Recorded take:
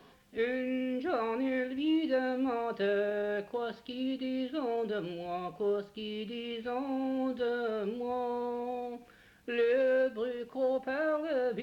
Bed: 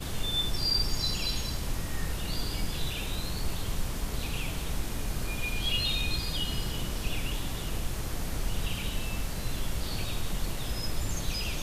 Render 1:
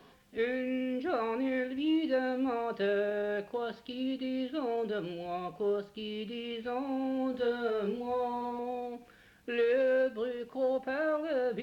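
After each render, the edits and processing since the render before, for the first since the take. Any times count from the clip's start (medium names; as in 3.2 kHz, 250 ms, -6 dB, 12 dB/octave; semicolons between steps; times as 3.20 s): 7.31–8.59 s: doubling 30 ms -4 dB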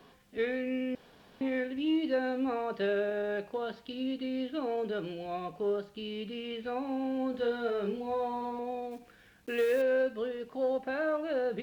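0.95–1.41 s: room tone; 8.91–9.82 s: block-companded coder 5-bit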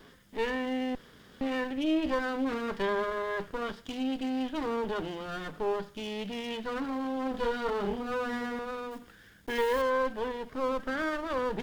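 comb filter that takes the minimum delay 0.59 ms; in parallel at -3.5 dB: saturation -32.5 dBFS, distortion -11 dB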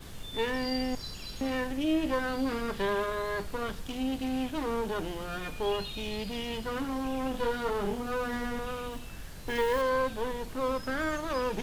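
add bed -11 dB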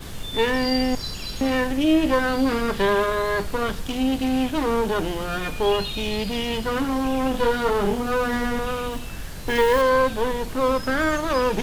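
trim +9.5 dB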